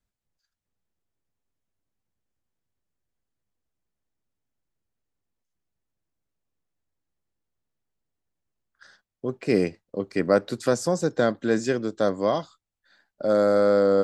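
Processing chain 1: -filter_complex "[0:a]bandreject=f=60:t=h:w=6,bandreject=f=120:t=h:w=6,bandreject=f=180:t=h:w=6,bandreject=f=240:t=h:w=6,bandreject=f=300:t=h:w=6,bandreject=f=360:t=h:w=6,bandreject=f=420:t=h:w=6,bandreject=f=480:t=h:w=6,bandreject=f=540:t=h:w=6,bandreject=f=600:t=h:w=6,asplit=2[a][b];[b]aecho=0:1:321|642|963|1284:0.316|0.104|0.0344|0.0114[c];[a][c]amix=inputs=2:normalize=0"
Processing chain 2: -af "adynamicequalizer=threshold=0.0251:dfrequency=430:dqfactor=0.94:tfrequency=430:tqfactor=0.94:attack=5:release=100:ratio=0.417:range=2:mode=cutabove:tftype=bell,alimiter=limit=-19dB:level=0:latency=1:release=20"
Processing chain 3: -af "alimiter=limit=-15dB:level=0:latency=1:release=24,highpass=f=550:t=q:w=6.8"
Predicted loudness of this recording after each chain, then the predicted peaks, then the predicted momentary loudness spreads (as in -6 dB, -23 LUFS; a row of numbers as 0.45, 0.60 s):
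-24.0, -30.5, -16.5 LUFS; -8.0, -19.0, -3.0 dBFS; 15, 7, 14 LU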